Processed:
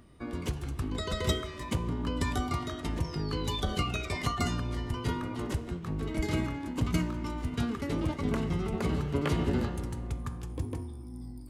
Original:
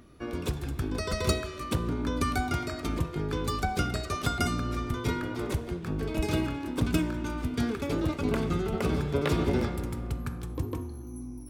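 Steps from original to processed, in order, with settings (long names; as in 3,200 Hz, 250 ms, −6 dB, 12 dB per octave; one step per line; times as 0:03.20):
sound drawn into the spectrogram fall, 0:03.03–0:04.60, 1,800–6,600 Hz −40 dBFS
formants moved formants −3 semitones
level −2 dB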